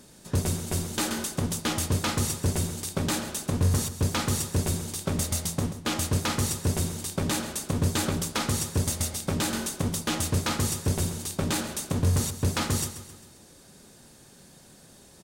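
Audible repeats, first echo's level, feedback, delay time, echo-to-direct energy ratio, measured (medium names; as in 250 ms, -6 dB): 4, -12.5 dB, 48%, 133 ms, -11.5 dB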